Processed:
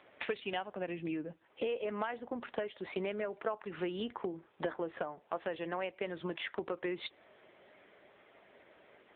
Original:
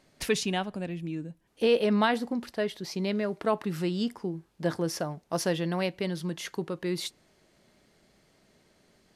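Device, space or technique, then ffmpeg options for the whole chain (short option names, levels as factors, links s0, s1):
voicemail: -af "highpass=450,lowpass=2900,acompressor=threshold=0.00708:ratio=10,volume=3.35" -ar 8000 -c:a libopencore_amrnb -b:a 6700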